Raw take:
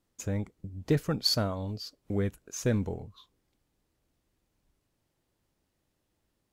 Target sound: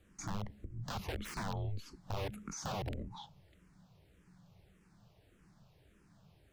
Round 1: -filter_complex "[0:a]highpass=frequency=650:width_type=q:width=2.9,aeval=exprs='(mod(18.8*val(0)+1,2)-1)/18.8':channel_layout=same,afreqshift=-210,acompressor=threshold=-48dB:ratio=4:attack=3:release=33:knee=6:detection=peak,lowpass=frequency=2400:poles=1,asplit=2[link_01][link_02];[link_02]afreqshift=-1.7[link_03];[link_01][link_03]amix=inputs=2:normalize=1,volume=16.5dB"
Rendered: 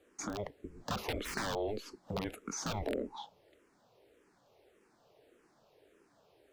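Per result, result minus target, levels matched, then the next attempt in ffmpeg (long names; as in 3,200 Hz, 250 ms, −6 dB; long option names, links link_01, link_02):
downward compressor: peak gain reduction −5.5 dB; 500 Hz band +4.5 dB
-filter_complex "[0:a]highpass=frequency=650:width_type=q:width=2.9,aeval=exprs='(mod(18.8*val(0)+1,2)-1)/18.8':channel_layout=same,afreqshift=-210,acompressor=threshold=-54dB:ratio=4:attack=3:release=33:knee=6:detection=peak,lowpass=frequency=2400:poles=1,asplit=2[link_01][link_02];[link_02]afreqshift=-1.7[link_03];[link_01][link_03]amix=inputs=2:normalize=1,volume=16.5dB"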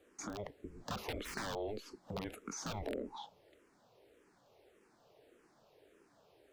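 500 Hz band +4.5 dB
-filter_complex "[0:a]aeval=exprs='(mod(18.8*val(0)+1,2)-1)/18.8':channel_layout=same,afreqshift=-210,acompressor=threshold=-54dB:ratio=4:attack=3:release=33:knee=6:detection=peak,lowpass=frequency=2400:poles=1,asplit=2[link_01][link_02];[link_02]afreqshift=-1.7[link_03];[link_01][link_03]amix=inputs=2:normalize=1,volume=16.5dB"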